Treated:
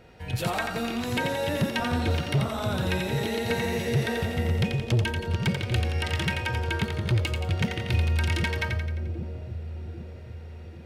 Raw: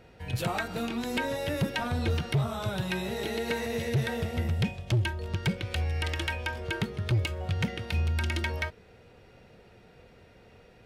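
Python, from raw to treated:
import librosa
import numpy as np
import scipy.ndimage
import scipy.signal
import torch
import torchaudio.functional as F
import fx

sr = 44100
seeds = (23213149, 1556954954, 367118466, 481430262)

y = fx.echo_split(x, sr, split_hz=550.0, low_ms=788, high_ms=87, feedback_pct=52, wet_db=-5.0)
y = y * 10.0 ** (2.0 / 20.0)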